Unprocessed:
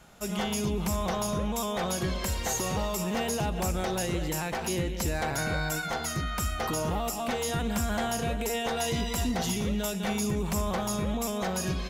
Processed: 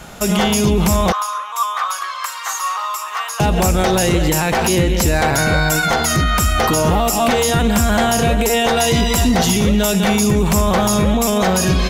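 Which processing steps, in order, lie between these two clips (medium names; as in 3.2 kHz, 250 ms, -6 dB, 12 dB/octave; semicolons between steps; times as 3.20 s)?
1.12–3.40 s: ladder high-pass 1.1 kHz, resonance 80%; loudness maximiser +25 dB; trim -6.5 dB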